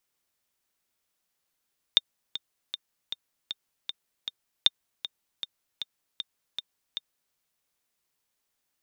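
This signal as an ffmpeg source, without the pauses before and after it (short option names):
-f lavfi -i "aevalsrc='pow(10,(-4.5-14.5*gte(mod(t,7*60/156),60/156))/20)*sin(2*PI*3630*mod(t,60/156))*exp(-6.91*mod(t,60/156)/0.03)':d=5.38:s=44100"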